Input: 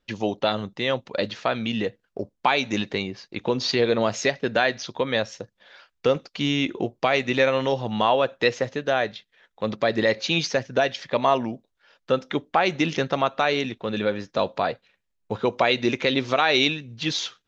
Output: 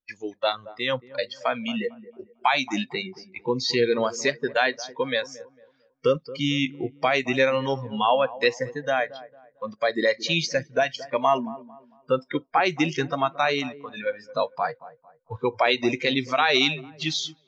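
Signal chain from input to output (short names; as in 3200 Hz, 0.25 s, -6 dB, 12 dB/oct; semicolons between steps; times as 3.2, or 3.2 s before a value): spectral noise reduction 22 dB; on a send: dark delay 0.225 s, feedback 31%, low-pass 1100 Hz, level -16.5 dB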